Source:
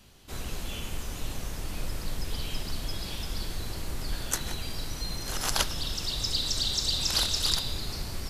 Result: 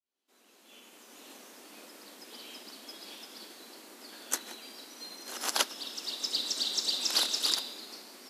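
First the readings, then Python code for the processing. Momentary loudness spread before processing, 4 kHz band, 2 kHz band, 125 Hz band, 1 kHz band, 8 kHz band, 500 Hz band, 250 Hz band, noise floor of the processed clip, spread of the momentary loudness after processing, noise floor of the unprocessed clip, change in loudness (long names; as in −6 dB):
12 LU, −2.5 dB, −3.5 dB, below −30 dB, −3.0 dB, −2.5 dB, −5.0 dB, −9.0 dB, −64 dBFS, 22 LU, −39 dBFS, +0.5 dB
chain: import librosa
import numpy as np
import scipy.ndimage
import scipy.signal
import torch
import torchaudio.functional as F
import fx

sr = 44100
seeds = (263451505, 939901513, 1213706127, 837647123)

y = fx.fade_in_head(x, sr, length_s=1.31)
y = scipy.signal.sosfilt(scipy.signal.butter(8, 230.0, 'highpass', fs=sr, output='sos'), y)
y = fx.upward_expand(y, sr, threshold_db=-49.0, expansion=1.5)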